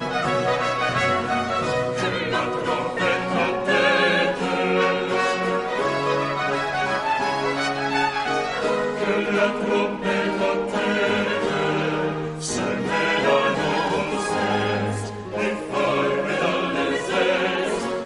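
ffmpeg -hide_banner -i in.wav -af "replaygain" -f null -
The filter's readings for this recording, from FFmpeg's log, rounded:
track_gain = +3.8 dB
track_peak = 0.301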